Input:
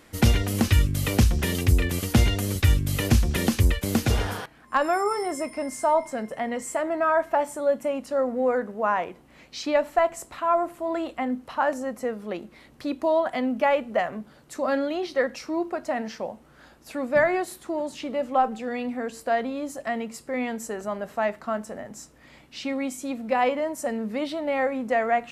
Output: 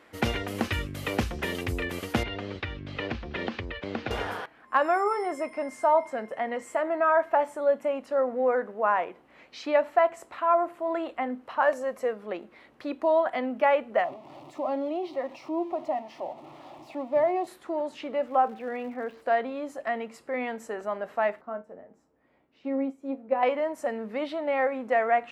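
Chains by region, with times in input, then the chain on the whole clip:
2.23–4.11 LPF 4500 Hz 24 dB/oct + compressor 2:1, threshold -25 dBFS
11.62–12.13 high shelf 3800 Hz +7 dB + comb 1.8 ms, depth 36%
14.04–17.47 zero-crossing step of -34 dBFS + LPF 1900 Hz 6 dB/oct + fixed phaser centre 310 Hz, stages 8
18.26–19.21 air absorption 270 m + crackle 390/s -41 dBFS
21.41–23.43 tilt shelf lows +9 dB, about 1200 Hz + resonator 90 Hz, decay 0.25 s, mix 70% + upward expander, over -39 dBFS
whole clip: HPF 46 Hz; tone controls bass -13 dB, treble -14 dB

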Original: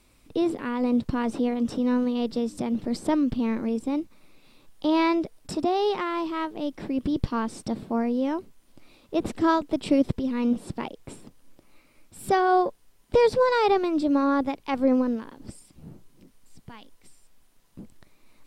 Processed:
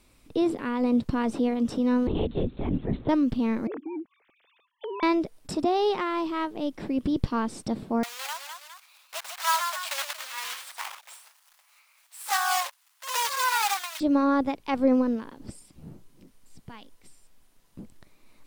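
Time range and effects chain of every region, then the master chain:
2.07–3.09 notches 50/100/150/200/250/300 Hz + LPC vocoder at 8 kHz whisper
3.67–5.03 sine-wave speech + compressor 16:1, threshold -31 dBFS
8.03–14.01 block floating point 3-bit + inverse Chebyshev high-pass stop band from 340 Hz, stop band 50 dB + echoes that change speed 0.219 s, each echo +1 st, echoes 2, each echo -6 dB
whole clip: dry

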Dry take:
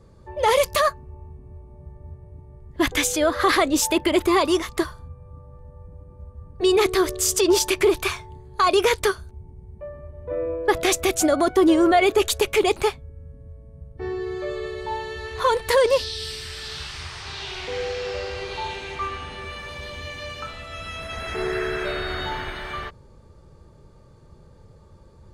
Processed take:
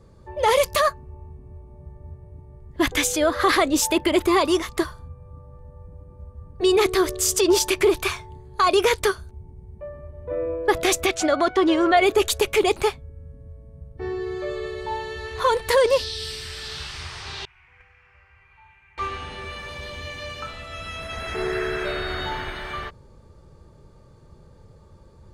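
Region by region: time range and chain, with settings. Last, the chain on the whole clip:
11.06–11.97 LPF 4100 Hz + tilt shelf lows -5 dB, about 690 Hz
17.45–18.98 gate -25 dBFS, range -19 dB + EQ curve 120 Hz 0 dB, 190 Hz -8 dB, 460 Hz -24 dB, 960 Hz -2 dB, 2400 Hz +2 dB, 3800 Hz -25 dB, 14000 Hz -9 dB
whole clip: dry

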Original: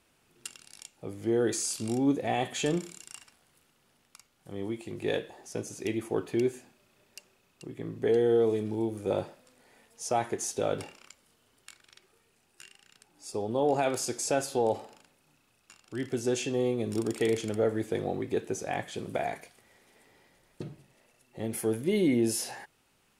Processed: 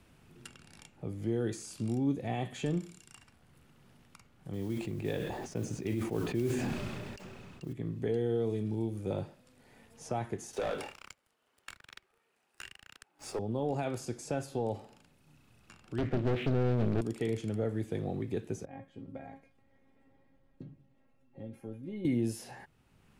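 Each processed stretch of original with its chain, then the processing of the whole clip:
4.53–7.73 LPF 7800 Hz + modulation noise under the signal 19 dB + sustainer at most 30 dB/s
10.53–13.39 HPF 550 Hz + sample leveller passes 3
15.98–17.01 steep low-pass 2700 Hz + sample leveller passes 3 + Doppler distortion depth 0.95 ms
18.65–22.05 LPF 1000 Hz 6 dB/oct + resonator 270 Hz, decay 0.16 s, mix 90%
whole clip: tone controls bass +12 dB, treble -4 dB; three-band squash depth 40%; gain -8.5 dB

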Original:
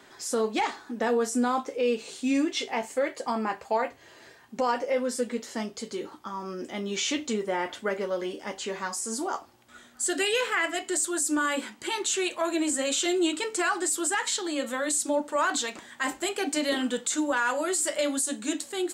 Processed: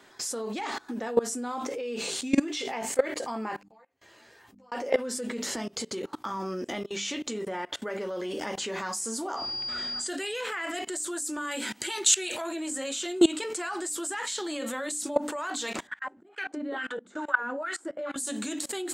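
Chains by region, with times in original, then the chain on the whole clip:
3.56–4.72 flipped gate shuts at -35 dBFS, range -37 dB + ensemble effect
5.55–7.82 compressor, threshold -40 dBFS + doubler 16 ms -13.5 dB
9.35–10.07 whine 4800 Hz -39 dBFS + air absorption 110 m + backwards sustainer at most 27 dB/s
11.51–12.44 Butterworth band-stop 1100 Hz, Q 6.2 + high shelf 2100 Hz +7 dB
15.87–18.16 bell 1500 Hz +8 dB 0.45 oct + auto swell 0.324 s + wah 2.3 Hz 200–2000 Hz, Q 2.1
whole clip: notches 50/100/150/200/250/300 Hz; level quantiser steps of 23 dB; maximiser +22 dB; gain -9 dB

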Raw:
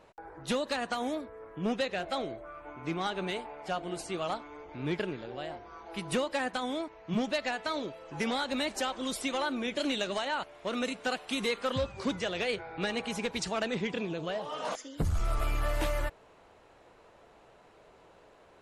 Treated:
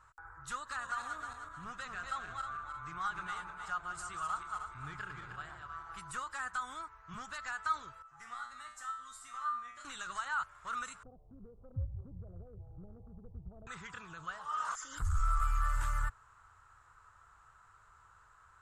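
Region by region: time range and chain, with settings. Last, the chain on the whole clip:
0.56–5.98 regenerating reverse delay 0.155 s, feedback 58%, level -6 dB + high shelf 9100 Hz -5.5 dB
8.02–9.85 notches 60/120/180/240/300/360/420/480/540 Hz + resonator 120 Hz, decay 0.55 s, mix 90% + small resonant body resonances 700/1200/1900 Hz, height 10 dB
11.03–13.67 steep low-pass 650 Hz 48 dB/oct + low shelf 390 Hz +9.5 dB + compressor 1.5:1, threshold -39 dBFS
14.38–15.76 bell 120 Hz -10 dB 0.79 oct + backwards sustainer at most 66 dB/s
whole clip: bell 7600 Hz +14 dB 0.51 oct; limiter -25 dBFS; EQ curve 100 Hz 0 dB, 230 Hz -25 dB, 610 Hz -25 dB, 1300 Hz +7 dB, 2300 Hz -14 dB, 3700 Hz -14 dB, 6700 Hz -11 dB; gain +1.5 dB

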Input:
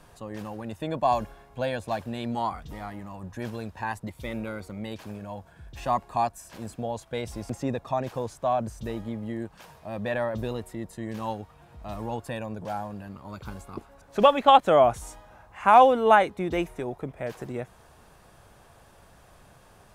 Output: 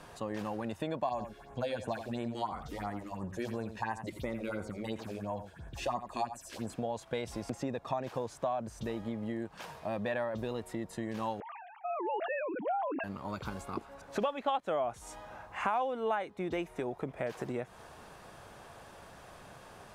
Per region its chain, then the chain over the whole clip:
1.09–6.7 phaser stages 4, 2.9 Hz, lowest notch 130–4500 Hz + echo 86 ms -12 dB
11.4–13.04 sine-wave speech + sustainer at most 40 dB/s
whole clip: high shelf 9500 Hz -9.5 dB; compressor 5:1, threshold -36 dBFS; low shelf 110 Hz -11 dB; gain +4.5 dB

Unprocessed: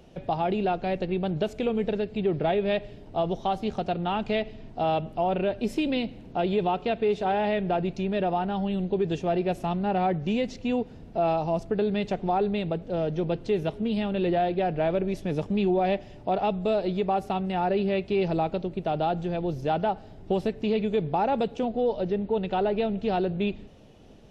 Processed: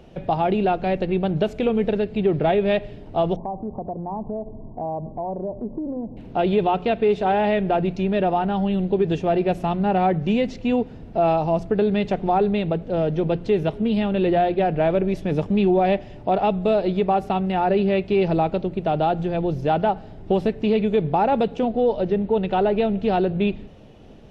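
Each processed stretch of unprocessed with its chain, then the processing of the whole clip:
3.36–6.17 Chebyshev low-pass 1100 Hz, order 8 + compressor 2.5:1, threshold -34 dBFS
whole clip: tone controls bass +1 dB, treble -7 dB; de-hum 88.06 Hz, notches 3; gain +5.5 dB

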